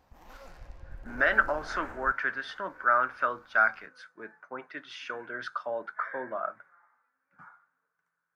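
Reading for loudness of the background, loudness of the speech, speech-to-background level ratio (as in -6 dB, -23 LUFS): -49.0 LUFS, -29.5 LUFS, 19.5 dB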